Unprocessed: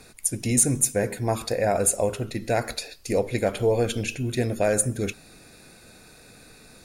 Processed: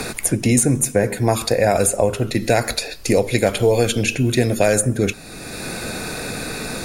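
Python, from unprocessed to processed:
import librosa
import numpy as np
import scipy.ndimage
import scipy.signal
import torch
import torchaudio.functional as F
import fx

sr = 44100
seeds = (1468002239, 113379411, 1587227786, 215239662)

y = fx.band_squash(x, sr, depth_pct=70)
y = y * 10.0 ** (7.0 / 20.0)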